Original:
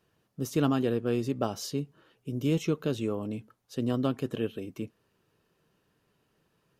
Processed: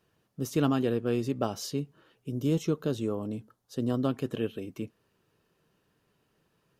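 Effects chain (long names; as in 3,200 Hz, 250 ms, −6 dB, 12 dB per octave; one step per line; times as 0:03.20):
0:02.30–0:04.09: parametric band 2,400 Hz −7.5 dB 0.68 octaves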